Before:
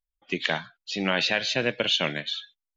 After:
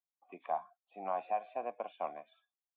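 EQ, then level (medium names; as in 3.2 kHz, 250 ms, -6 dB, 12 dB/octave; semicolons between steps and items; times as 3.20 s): cascade formant filter a; high-pass 200 Hz 24 dB/octave; +4.5 dB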